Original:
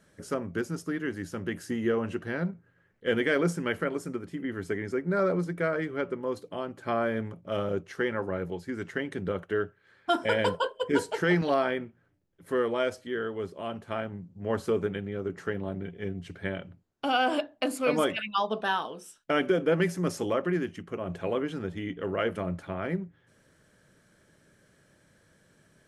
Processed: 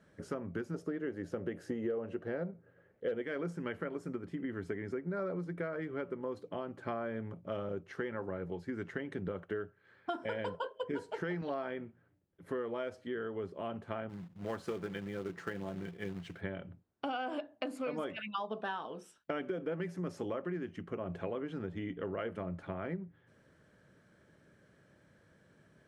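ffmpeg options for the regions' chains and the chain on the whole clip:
ffmpeg -i in.wav -filter_complex "[0:a]asettb=1/sr,asplit=3[link_01][link_02][link_03];[link_01]atrim=end=0.744[link_04];[link_02]atrim=start=0.74:end=3.22,asetpts=PTS-STARTPTS,afade=type=in:duration=0.004:curve=qsin,afade=type=out:start_time=2.476:duration=0.004:curve=qsin,equalizer=frequency=520:width=1.3:gain=11,bandreject=frequency=1000:width=15,asoftclip=type=hard:threshold=-10.5dB[link_05];[link_03]atrim=start=3.216[link_06];[link_04][link_05]acrossfade=duration=0.004:curve1=hsin:curve2=qsin[link_07];[link_07][link_06]acrossfade=duration=0.004:curve1=qsin:curve2=hsin,asettb=1/sr,asplit=3[link_08][link_09][link_10];[link_08]atrim=end=14.094[link_11];[link_09]atrim=start=14.09:end=16.41,asetpts=PTS-STARTPTS,afade=type=in:duration=0.004:curve=qsin,afade=type=out:start_time=2.316:duration=0.004:curve=qsin,tiltshelf=frequency=1200:gain=-4,aecho=1:1:5.9:0.31,atrim=end_sample=102312,acrusher=bits=3:mode=log:mix=0:aa=0.000001[link_12];[link_10]atrim=start=16.406[link_13];[link_11][link_12]acrossfade=duration=0.004:curve1=hsin:curve2=qsin[link_14];[link_14][link_13]acrossfade=duration=0.004:curve1=qsin:curve2=hsin,lowpass=frequency=2100:poles=1,acompressor=threshold=-34dB:ratio=5,highpass=51,volume=-1dB" out.wav

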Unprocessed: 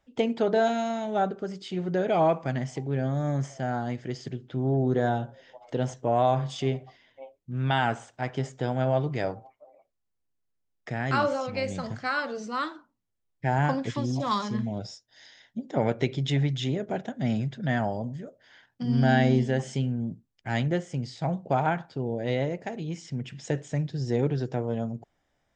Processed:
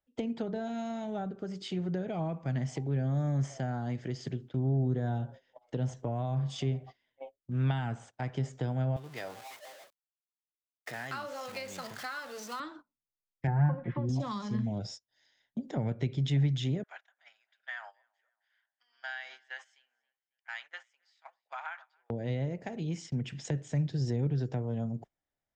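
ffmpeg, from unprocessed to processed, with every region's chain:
ffmpeg -i in.wav -filter_complex "[0:a]asettb=1/sr,asplit=3[link_01][link_02][link_03];[link_01]atrim=end=8.964[link_04];[link_02]atrim=start=8.96:end=12.6,asetpts=PTS-STARTPTS,afade=type=in:duration=0.004:curve=qsin,afade=type=out:start_time=3.636:duration=0.004:curve=qsin,aeval=exprs='val(0)+0.5*0.015*sgn(val(0))':channel_layout=same,highpass=frequency=1100:poles=1,bandreject=frequency=2300:width=29[link_05];[link_03]atrim=start=12.596[link_06];[link_04][link_05]acrossfade=duration=0.004:curve1=hsin:curve2=qsin[link_07];[link_07][link_06]acrossfade=duration=0.004:curve1=qsin:curve2=hsin,asettb=1/sr,asplit=3[link_08][link_09][link_10];[link_08]atrim=end=13.474[link_11];[link_09]atrim=start=13.47:end=14.09,asetpts=PTS-STARTPTS,afade=type=in:duration=0.004:curve=qsin,afade=type=out:start_time=0.616:duration=0.004:curve=qsin,lowpass=frequency=2000:width=0.5412,lowpass=frequency=2000:width=1.3066,aecho=1:1:5.6:0.81,atrim=end_sample=27342[link_12];[link_10]atrim=start=14.086[link_13];[link_11][link_12]acrossfade=duration=0.004:curve1=hsin:curve2=qsin[link_14];[link_14][link_13]acrossfade=duration=0.004:curve1=qsin:curve2=hsin,asettb=1/sr,asplit=3[link_15][link_16][link_17];[link_15]atrim=end=16.834[link_18];[link_16]atrim=start=16.83:end=22.1,asetpts=PTS-STARTPTS,afade=type=in:duration=0.004:curve=qsin,afade=type=out:start_time=5.266:duration=0.004:curve=qsin,highpass=frequency=1200:width=0.5412,highpass=frequency=1200:width=1.3066,aemphasis=mode=reproduction:type=75kf,asplit=2[link_19][link_20];[link_20]adelay=274,lowpass=frequency=4000:poles=1,volume=-19dB,asplit=2[link_21][link_22];[link_22]adelay=274,lowpass=frequency=4000:poles=1,volume=0.43,asplit=2[link_23][link_24];[link_24]adelay=274,lowpass=frequency=4000:poles=1,volume=0.43[link_25];[link_19][link_21][link_23][link_25]amix=inputs=4:normalize=0,atrim=end_sample=232407[link_26];[link_17]atrim=start=22.096[link_27];[link_18][link_26]acrossfade=duration=0.004:curve1=hsin:curve2=qsin[link_28];[link_28][link_27]acrossfade=duration=0.004:curve1=qsin:curve2=hsin,agate=range=-18dB:threshold=-44dB:ratio=16:detection=peak,acrossover=split=200[link_29][link_30];[link_30]acompressor=threshold=-36dB:ratio=10[link_31];[link_29][link_31]amix=inputs=2:normalize=0" out.wav

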